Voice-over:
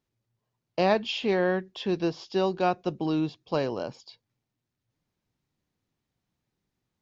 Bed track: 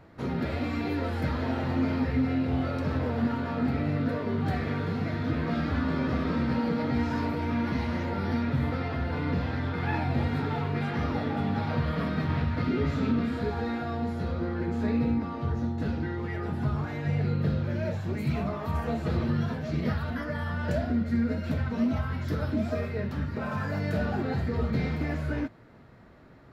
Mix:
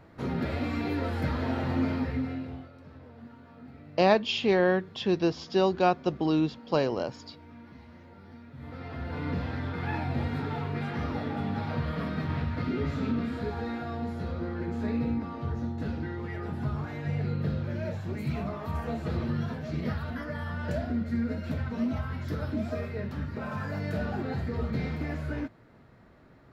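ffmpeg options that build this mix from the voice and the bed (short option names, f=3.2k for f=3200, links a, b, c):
-filter_complex "[0:a]adelay=3200,volume=1.5dB[a];[1:a]volume=17dB,afade=t=out:st=1.81:d=0.88:silence=0.1,afade=t=in:st=8.54:d=0.73:silence=0.133352[b];[a][b]amix=inputs=2:normalize=0"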